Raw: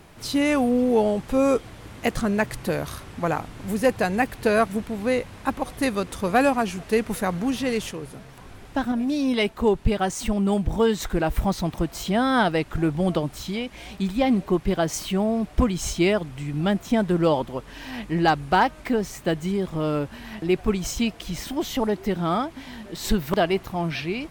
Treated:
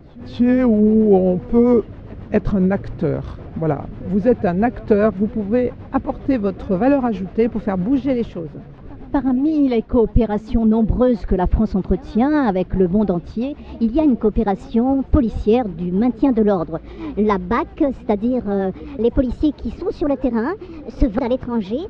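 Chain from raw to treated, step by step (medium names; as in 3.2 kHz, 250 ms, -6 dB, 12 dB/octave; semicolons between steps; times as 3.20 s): gliding tape speed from 85% -> 137%; low-pass 5.1 kHz 24 dB/octave; tilt shelf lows +9.5 dB, about 1.4 kHz; rotary cabinet horn 7.5 Hz; on a send: reverse echo 239 ms -24 dB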